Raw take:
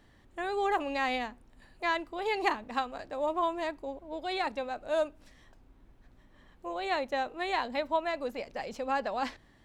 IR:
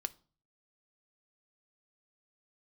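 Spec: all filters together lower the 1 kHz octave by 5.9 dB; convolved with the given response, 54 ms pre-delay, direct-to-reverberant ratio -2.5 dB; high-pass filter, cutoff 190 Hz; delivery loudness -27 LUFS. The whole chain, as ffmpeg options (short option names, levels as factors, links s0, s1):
-filter_complex "[0:a]highpass=190,equalizer=f=1000:t=o:g=-8,asplit=2[s0][s1];[1:a]atrim=start_sample=2205,adelay=54[s2];[s1][s2]afir=irnorm=-1:irlink=0,volume=1.41[s3];[s0][s3]amix=inputs=2:normalize=0,volume=1.68"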